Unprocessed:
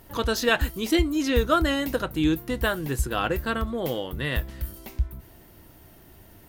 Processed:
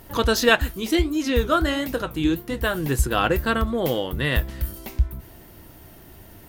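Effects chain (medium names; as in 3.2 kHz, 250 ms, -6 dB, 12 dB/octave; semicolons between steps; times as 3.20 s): 0.55–2.75 s: flange 1.5 Hz, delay 8.6 ms, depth 9.5 ms, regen -67%; trim +5 dB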